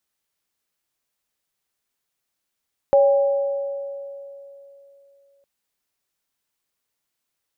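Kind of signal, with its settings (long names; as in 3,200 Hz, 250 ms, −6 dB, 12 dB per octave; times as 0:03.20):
inharmonic partials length 2.51 s, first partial 558 Hz, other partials 804 Hz, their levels −10.5 dB, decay 3.17 s, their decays 1.98 s, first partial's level −10.5 dB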